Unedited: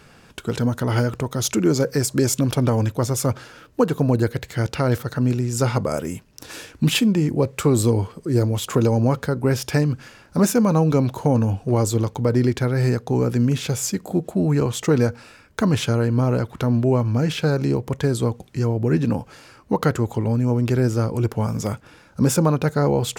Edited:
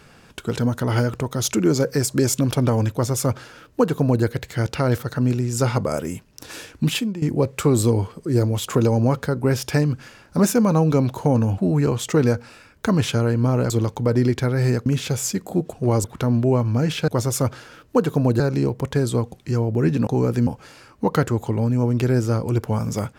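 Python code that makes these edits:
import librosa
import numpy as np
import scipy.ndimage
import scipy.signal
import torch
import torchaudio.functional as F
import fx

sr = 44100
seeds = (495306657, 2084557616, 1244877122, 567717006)

y = fx.edit(x, sr, fx.duplicate(start_s=2.92, length_s=1.32, to_s=17.48),
    fx.fade_out_to(start_s=6.74, length_s=0.48, floor_db=-14.5),
    fx.swap(start_s=11.58, length_s=0.31, other_s=14.32, other_length_s=2.12),
    fx.move(start_s=13.05, length_s=0.4, to_s=19.15), tone=tone)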